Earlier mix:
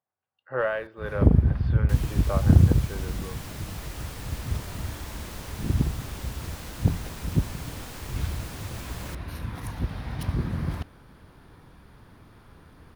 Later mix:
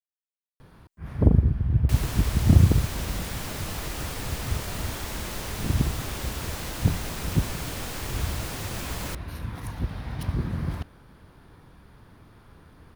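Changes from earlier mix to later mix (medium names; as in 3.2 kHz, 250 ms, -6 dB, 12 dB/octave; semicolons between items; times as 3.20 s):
speech: muted; second sound +6.5 dB; reverb: off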